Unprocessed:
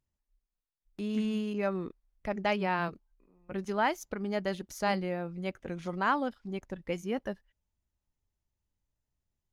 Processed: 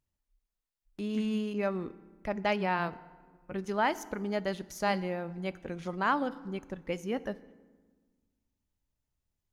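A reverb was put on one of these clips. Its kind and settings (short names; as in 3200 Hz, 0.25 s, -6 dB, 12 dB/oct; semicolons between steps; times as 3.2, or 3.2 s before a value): FDN reverb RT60 1.4 s, low-frequency decay 1.4×, high-frequency decay 0.65×, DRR 15.5 dB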